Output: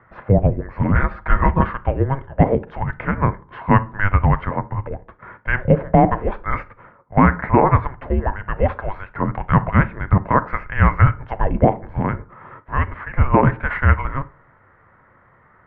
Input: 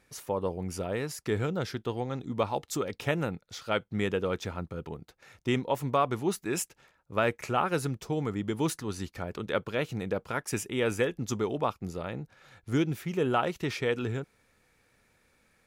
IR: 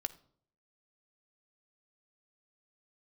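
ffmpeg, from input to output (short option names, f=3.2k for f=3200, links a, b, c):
-filter_complex "[0:a]asettb=1/sr,asplit=3[a][b][c];[a]atrim=end=0.944[d];[b]atrim=start=0.94:end=1.67,asetpts=PTS-STARTPTS,afade=t=in:d=0.004:c=qsin,afade=t=out:st=0.726:d=0.004:c=qsin,aecho=1:1:6.7:0.94,atrim=end_sample=32193[e];[c]atrim=start=1.666[f];[d][e]acrossfade=d=0.004:c1=hsin:c2=qsin[g];[g][f]acrossfade=d=0.004:c1=qsin:c2=hsin,asettb=1/sr,asplit=3[h][i][j];[h]atrim=end=2.514[k];[i]atrim=start=2.51:end=3.15,asetpts=PTS-STARTPTS,afade=t=in:d=0.004:c=qsin,afade=t=out:st=0.636:d=0.004:c=qsin,acompressor=threshold=-33dB:ratio=3[l];[j]atrim=start=3.146[m];[k][l]acrossfade=d=0.004:c1=hsin:c2=qsin[n];[n][m]acrossfade=d=0.004:c1=qsin:c2=hsin[o];[1:a]atrim=start_sample=2205,asetrate=61740,aresample=44100[p];[o][p]afir=irnorm=-1:irlink=0,highpass=f=490:t=q:w=0.5412,highpass=f=490:t=q:w=1.307,lowpass=f=2.2k:t=q:w=0.5176,lowpass=f=2.2k:t=q:w=0.7071,lowpass=f=2.2k:t=q:w=1.932,afreqshift=-400,alimiter=level_in=23dB:limit=-1dB:release=50:level=0:latency=1,volume=-1dB"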